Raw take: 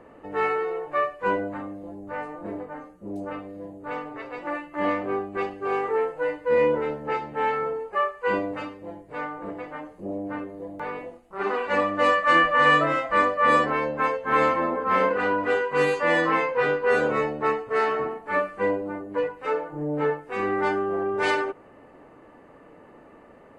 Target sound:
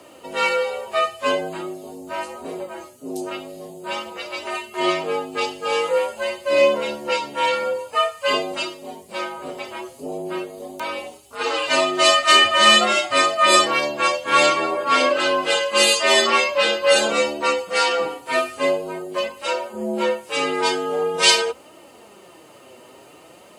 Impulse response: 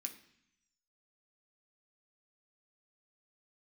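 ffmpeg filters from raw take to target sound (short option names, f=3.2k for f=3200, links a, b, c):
-af "afreqshift=67,flanger=delay=3:depth=5.3:regen=46:speed=0.46:shape=triangular,aexciter=amount=11.5:drive=3.3:freq=2.8k,volume=7dB"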